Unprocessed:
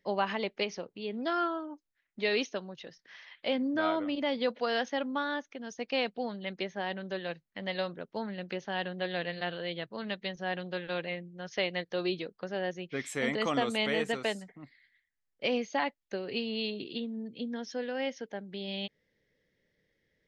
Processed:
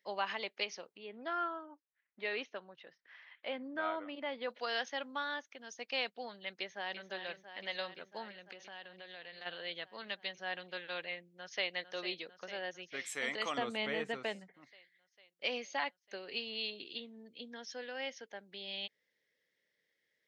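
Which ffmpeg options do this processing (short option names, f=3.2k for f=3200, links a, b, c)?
-filter_complex "[0:a]asettb=1/sr,asplit=3[a][b][c];[a]atrim=end=0.974[d];[b]atrim=start=0.97:end=4.5,asetpts=PTS-STARTPTS,afade=t=in:d=0.004:c=qsin,afade=t=out:st=3.526:d=0.004:c=qsin,lowpass=2.2k[e];[c]atrim=start=4.496[f];[d][e]acrossfade=d=0.004:c1=hsin:c2=qsin[g];[g][f]acrossfade=d=0.004:c1=qsin:c2=hsin,asplit=2[h][i];[i]afade=t=in:st=6.57:d=0.01,afade=t=out:st=7.1:d=0.01,aecho=0:1:340|680|1020|1360|1700|2040|2380|2720|3060|3400|3740|4080:0.334965|0.267972|0.214378|0.171502|0.137202|0.109761|0.0878092|0.0702473|0.0561979|0.0449583|0.0359666|0.0287733[j];[h][j]amix=inputs=2:normalize=0,asplit=3[k][l][m];[k]afade=t=out:st=8.31:d=0.02[n];[l]acompressor=threshold=-40dB:ratio=5:attack=3.2:release=140:knee=1:detection=peak,afade=t=in:st=8.31:d=0.02,afade=t=out:st=9.45:d=0.02[o];[m]afade=t=in:st=9.45:d=0.02[p];[n][o][p]amix=inputs=3:normalize=0,asplit=2[q][r];[r]afade=t=in:st=11.23:d=0.01,afade=t=out:st=11.73:d=0.01,aecho=0:1:450|900|1350|1800|2250|2700|3150|3600|4050|4500|4950|5400:0.266073|0.199554|0.149666|0.112249|0.084187|0.0631403|0.0473552|0.0355164|0.0266373|0.019978|0.0149835|0.0112376[s];[q][s]amix=inputs=2:normalize=0,asettb=1/sr,asplit=3[t][u][v];[t]atrim=end=13.584[w];[u]atrim=start=13.58:end=14.54,asetpts=PTS-STARTPTS,afade=t=in:d=0.004:c=qsin,afade=t=out:st=0.956:d=0.004:c=qsin,aemphasis=mode=reproduction:type=riaa[x];[v]atrim=start=14.536[y];[w][x]acrossfade=d=0.004:c1=hsin:c2=qsin[z];[z][y]acrossfade=d=0.004:c1=qsin:c2=hsin,lowpass=f=1.2k:p=1,aderivative,volume=14dB"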